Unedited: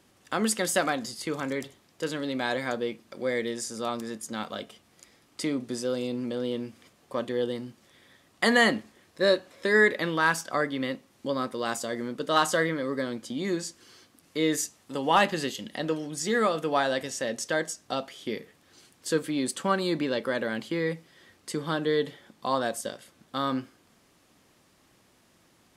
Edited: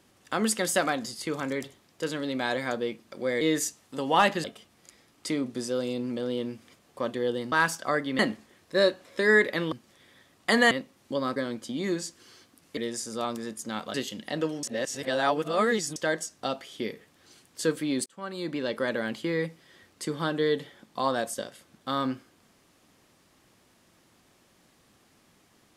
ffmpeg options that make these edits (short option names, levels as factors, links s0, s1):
-filter_complex "[0:a]asplit=13[s0][s1][s2][s3][s4][s5][s6][s7][s8][s9][s10][s11][s12];[s0]atrim=end=3.412[s13];[s1]atrim=start=14.378:end=15.412[s14];[s2]atrim=start=4.578:end=7.662[s15];[s3]atrim=start=10.178:end=10.852[s16];[s4]atrim=start=8.648:end=10.182[s17];[s5]atrim=start=7.658:end=8.652[s18];[s6]atrim=start=10.848:end=11.502[s19];[s7]atrim=start=12.968:end=14.382[s20];[s8]atrim=start=3.408:end=4.582[s21];[s9]atrim=start=15.408:end=16.102[s22];[s10]atrim=start=16.098:end=17.432,asetpts=PTS-STARTPTS,areverse[s23];[s11]atrim=start=17.428:end=19.53,asetpts=PTS-STARTPTS,afade=t=out:st=2.098:d=0.004:c=hsin[s24];[s12]atrim=start=19.53,asetpts=PTS-STARTPTS,afade=t=in:d=0.75[s25];[s13][s14]acrossfade=d=0.004:c1=hsin:c2=hsin[s26];[s26][s15]acrossfade=d=0.004:c1=hsin:c2=hsin[s27];[s27][s16]acrossfade=d=0.004:c1=hsin:c2=hsin[s28];[s28][s17]acrossfade=d=0.004:c1=hsin:c2=hsin[s29];[s29][s18]acrossfade=d=0.004:c1=hsin:c2=hsin[s30];[s30][s19]acrossfade=d=0.004:c1=hsin:c2=hsin[s31];[s31][s20]acrossfade=d=0.004:c1=hsin:c2=hsin[s32];[s32][s21]acrossfade=d=0.004:c1=hsin:c2=hsin[s33];[s33][s22]acrossfade=d=0.004:c1=hsin:c2=hsin[s34];[s34][s23]acrossfade=d=0.004:c1=hsin:c2=hsin[s35];[s24][s25]concat=n=2:v=0:a=1[s36];[s35][s36]acrossfade=d=0.004:c1=hsin:c2=hsin"